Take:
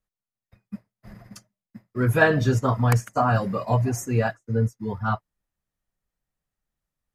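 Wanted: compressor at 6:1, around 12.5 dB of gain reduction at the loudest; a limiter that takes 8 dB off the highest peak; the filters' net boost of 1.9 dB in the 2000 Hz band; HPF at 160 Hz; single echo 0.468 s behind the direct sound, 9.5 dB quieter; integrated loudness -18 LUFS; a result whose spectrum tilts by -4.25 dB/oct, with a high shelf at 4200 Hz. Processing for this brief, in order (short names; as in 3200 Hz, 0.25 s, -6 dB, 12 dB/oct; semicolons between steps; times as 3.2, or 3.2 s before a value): HPF 160 Hz; bell 2000 Hz +4 dB; high shelf 4200 Hz -8.5 dB; compressor 6:1, threshold -25 dBFS; limiter -21 dBFS; echo 0.468 s -9.5 dB; gain +14.5 dB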